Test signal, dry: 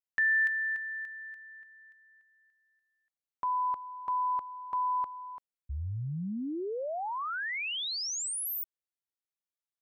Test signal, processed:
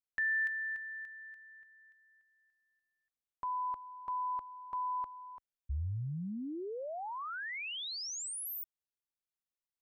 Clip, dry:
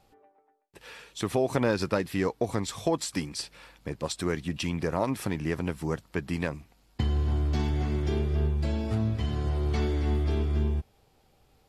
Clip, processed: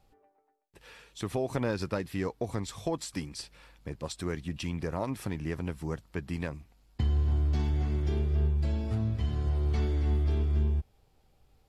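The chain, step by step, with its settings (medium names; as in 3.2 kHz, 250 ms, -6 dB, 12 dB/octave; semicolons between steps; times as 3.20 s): bass shelf 85 Hz +11 dB; trim -6 dB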